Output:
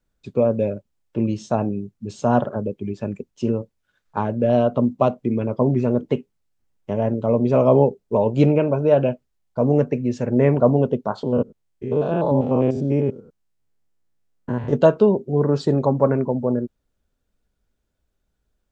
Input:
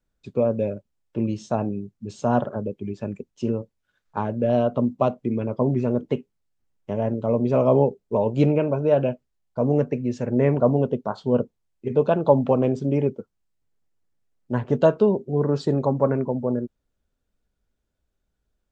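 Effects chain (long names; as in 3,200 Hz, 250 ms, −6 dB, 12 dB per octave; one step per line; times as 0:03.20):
0:11.23–0:14.73: spectrum averaged block by block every 100 ms
level +3 dB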